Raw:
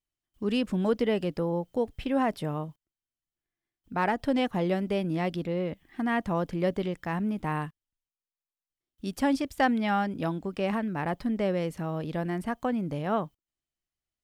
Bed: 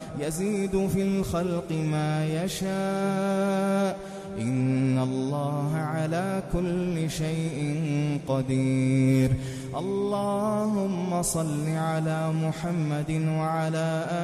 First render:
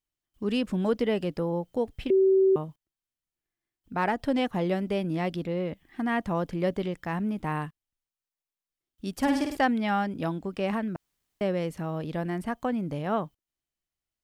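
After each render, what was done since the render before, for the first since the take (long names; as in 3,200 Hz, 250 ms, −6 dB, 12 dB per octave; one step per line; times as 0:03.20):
0:02.10–0:02.56: beep over 383 Hz −17 dBFS
0:09.16–0:09.57: flutter between parallel walls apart 9 metres, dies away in 0.68 s
0:10.96–0:11.41: fill with room tone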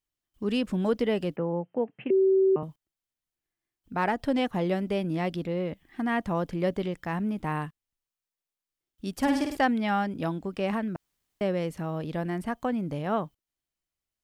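0:01.36–0:02.63: Chebyshev band-pass filter 130–2,800 Hz, order 5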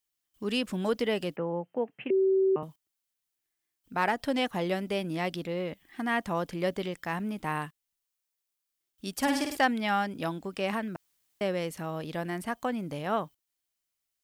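spectral tilt +2 dB per octave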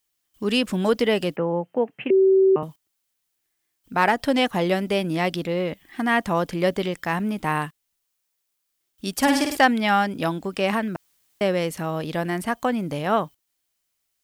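level +8 dB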